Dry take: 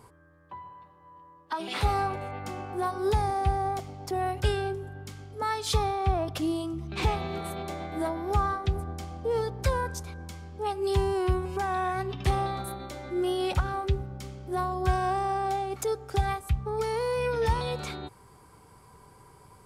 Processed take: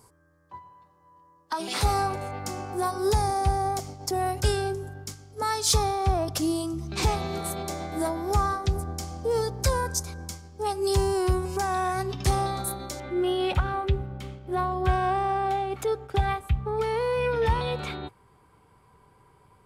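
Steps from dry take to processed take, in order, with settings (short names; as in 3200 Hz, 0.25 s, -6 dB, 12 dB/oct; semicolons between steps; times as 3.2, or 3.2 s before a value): gate -41 dBFS, range -7 dB; resonant high shelf 4200 Hz +8 dB, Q 1.5, from 13 s -6 dB; soft clip -12.5 dBFS, distortion -27 dB; gain +2.5 dB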